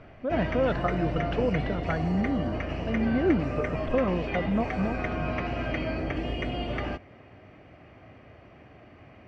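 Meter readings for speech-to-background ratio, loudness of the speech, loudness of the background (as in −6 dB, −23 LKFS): 2.5 dB, −29.5 LKFS, −32.0 LKFS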